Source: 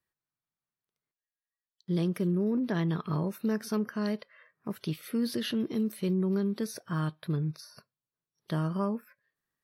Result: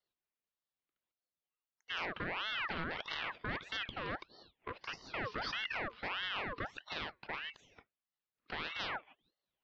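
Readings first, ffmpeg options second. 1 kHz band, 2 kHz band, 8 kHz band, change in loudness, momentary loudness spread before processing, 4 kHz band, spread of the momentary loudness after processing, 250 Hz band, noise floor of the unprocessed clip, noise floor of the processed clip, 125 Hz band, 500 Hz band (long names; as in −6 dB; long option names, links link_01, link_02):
+0.5 dB, +7.0 dB, −15.5 dB, −8.5 dB, 9 LU, +3.0 dB, 9 LU, −21.5 dB, below −85 dBFS, below −85 dBFS, −20.0 dB, −12.5 dB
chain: -af "aeval=exprs='0.0335*(abs(mod(val(0)/0.0335+3,4)-2)-1)':channel_layout=same,highpass=frequency=240:width_type=q:width=0.5412,highpass=frequency=240:width_type=q:width=1.307,lowpass=frequency=3300:width_type=q:width=0.5176,lowpass=frequency=3300:width_type=q:width=0.7071,lowpass=frequency=3300:width_type=q:width=1.932,afreqshift=61,aeval=exprs='val(0)*sin(2*PI*1600*n/s+1600*0.55/1.6*sin(2*PI*1.6*n/s))':channel_layout=same,volume=1.5dB"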